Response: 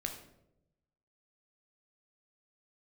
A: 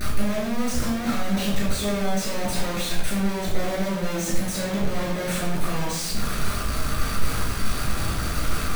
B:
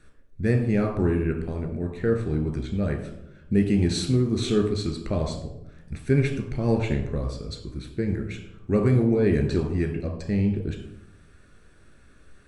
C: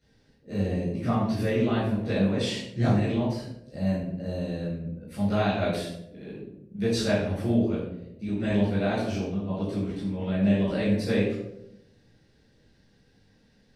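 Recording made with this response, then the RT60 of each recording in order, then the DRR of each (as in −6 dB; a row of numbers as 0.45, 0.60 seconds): B; 0.85, 0.85, 0.85 seconds; −6.0, 3.0, −11.5 decibels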